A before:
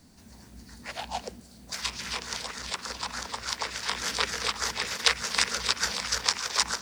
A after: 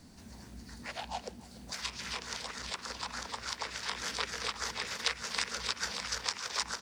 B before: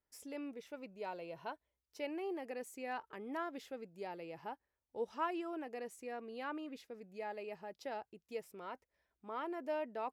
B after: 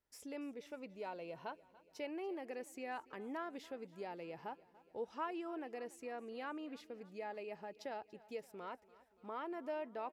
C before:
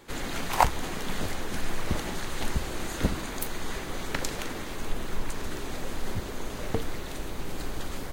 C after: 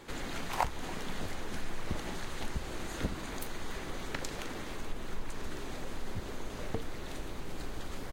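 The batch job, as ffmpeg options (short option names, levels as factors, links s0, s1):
-filter_complex "[0:a]highshelf=f=10000:g=-7,acompressor=threshold=0.00398:ratio=1.5,asplit=2[s0][s1];[s1]aecho=0:1:287|574|861|1148|1435:0.0944|0.0557|0.0329|0.0194|0.0114[s2];[s0][s2]amix=inputs=2:normalize=0,volume=1.19"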